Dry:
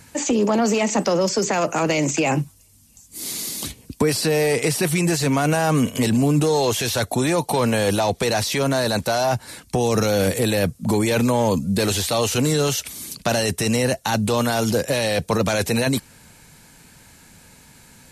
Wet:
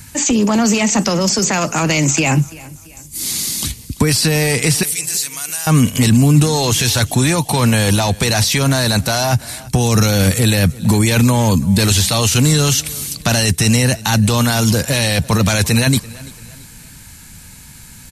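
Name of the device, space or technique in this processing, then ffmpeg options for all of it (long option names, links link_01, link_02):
smiley-face EQ: -filter_complex "[0:a]acrossover=split=8800[link_01][link_02];[link_02]acompressor=threshold=-37dB:ratio=4:attack=1:release=60[link_03];[link_01][link_03]amix=inputs=2:normalize=0,lowshelf=frequency=160:gain=8,equalizer=frequency=490:width_type=o:width=1.7:gain=-9,highshelf=frequency=6900:gain=6.5,asettb=1/sr,asplit=3[link_04][link_05][link_06];[link_04]atrim=end=4.834[link_07];[link_05]atrim=start=4.83:end=5.67,asetpts=PTS-STARTPTS,afade=type=in:duration=0.004:curve=qsin,afade=type=out:start_time=0.836:duration=0.004:curve=qsin,aderivative[link_08];[link_06]atrim=start=5.666[link_09];[link_07][link_08]acrossfade=duration=0.004:curve1=hsin:curve2=qsin[link_10];[link_10][link_09]acrossfade=duration=0.004:curve1=qsin:curve2=hsin,aecho=1:1:338|676|1014:0.0891|0.0374|0.0157,volume=7dB"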